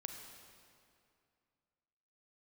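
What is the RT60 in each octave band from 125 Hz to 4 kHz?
2.6, 2.6, 2.4, 2.4, 2.2, 1.9 s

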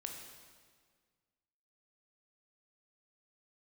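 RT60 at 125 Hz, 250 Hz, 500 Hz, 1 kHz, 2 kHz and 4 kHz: 2.0, 1.9, 1.8, 1.7, 1.6, 1.5 s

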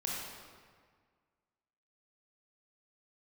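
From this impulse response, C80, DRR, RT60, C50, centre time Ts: 0.5 dB, -4.5 dB, 1.7 s, -1.5 dB, 0.105 s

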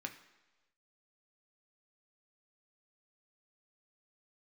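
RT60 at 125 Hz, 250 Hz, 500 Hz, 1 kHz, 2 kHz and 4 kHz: 0.95, 0.95, 1.2, 1.1, 1.1, 1.1 s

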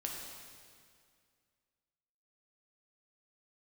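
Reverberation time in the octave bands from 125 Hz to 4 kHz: 2.4, 2.3, 2.2, 2.1, 2.1, 1.9 s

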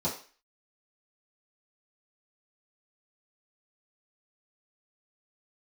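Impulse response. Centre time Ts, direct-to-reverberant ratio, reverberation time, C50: 25 ms, -9.5 dB, 0.40 s, 8.5 dB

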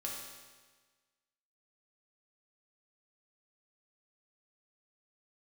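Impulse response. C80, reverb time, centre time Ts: 3.5 dB, 1.4 s, 71 ms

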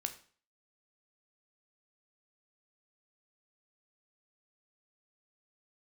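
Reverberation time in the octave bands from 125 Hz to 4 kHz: 0.50, 0.45, 0.45, 0.45, 0.45, 0.40 s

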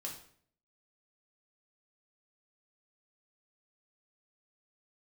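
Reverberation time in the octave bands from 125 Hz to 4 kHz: 0.75, 0.70, 0.60, 0.55, 0.50, 0.45 s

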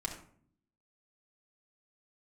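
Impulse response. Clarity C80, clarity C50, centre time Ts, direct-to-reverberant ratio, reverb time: 10.5 dB, 7.0 dB, 20 ms, -1.5 dB, 0.55 s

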